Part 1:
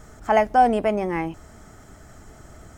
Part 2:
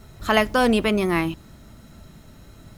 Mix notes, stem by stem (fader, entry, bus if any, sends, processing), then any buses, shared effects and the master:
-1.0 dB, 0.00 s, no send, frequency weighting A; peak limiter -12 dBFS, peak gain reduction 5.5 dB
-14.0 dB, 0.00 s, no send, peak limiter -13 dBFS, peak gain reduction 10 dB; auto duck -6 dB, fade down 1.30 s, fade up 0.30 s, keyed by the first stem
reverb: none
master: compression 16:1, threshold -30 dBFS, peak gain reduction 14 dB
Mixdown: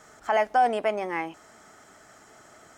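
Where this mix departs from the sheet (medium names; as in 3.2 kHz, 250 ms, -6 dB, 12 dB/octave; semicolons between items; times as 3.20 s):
stem 2 -14.0 dB -> -25.0 dB; master: missing compression 16:1, threshold -30 dBFS, peak gain reduction 14 dB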